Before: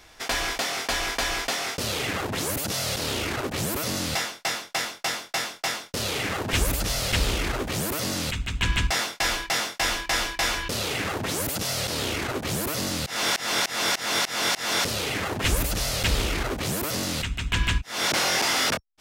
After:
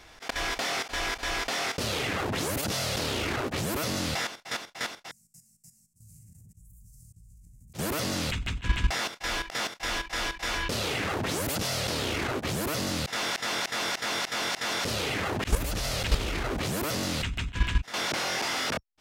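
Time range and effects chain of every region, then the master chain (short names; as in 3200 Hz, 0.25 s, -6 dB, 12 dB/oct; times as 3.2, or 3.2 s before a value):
5.11–7.74 elliptic band-stop 160–7800 Hz + compressor 5:1, threshold -41 dBFS + resonator 55 Hz, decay 0.48 s, mix 70%
whole clip: auto swell 0.105 s; high shelf 6700 Hz -7 dB; level quantiser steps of 11 dB; gain +3 dB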